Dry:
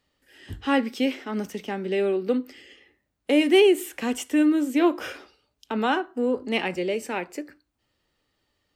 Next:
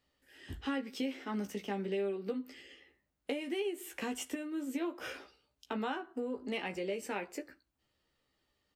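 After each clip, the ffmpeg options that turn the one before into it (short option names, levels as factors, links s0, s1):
-filter_complex "[0:a]acompressor=threshold=0.0447:ratio=16,asplit=2[s0][s1];[s1]adelay=15,volume=0.531[s2];[s0][s2]amix=inputs=2:normalize=0,volume=0.473"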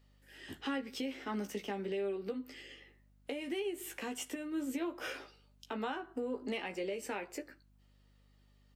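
-af "highpass=210,aeval=exprs='val(0)+0.000398*(sin(2*PI*50*n/s)+sin(2*PI*2*50*n/s)/2+sin(2*PI*3*50*n/s)/3+sin(2*PI*4*50*n/s)/4+sin(2*PI*5*50*n/s)/5)':c=same,alimiter=level_in=2.37:limit=0.0631:level=0:latency=1:release=307,volume=0.422,volume=1.41"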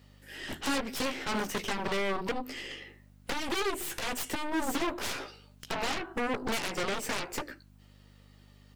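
-af "highpass=58,aeval=exprs='0.0422*(cos(1*acos(clip(val(0)/0.0422,-1,1)))-cos(1*PI/2))+0.0211*(cos(7*acos(clip(val(0)/0.0422,-1,1)))-cos(7*PI/2))+0.00841*(cos(8*acos(clip(val(0)/0.0422,-1,1)))-cos(8*PI/2))':c=same,asoftclip=type=hard:threshold=0.0376,volume=1.5"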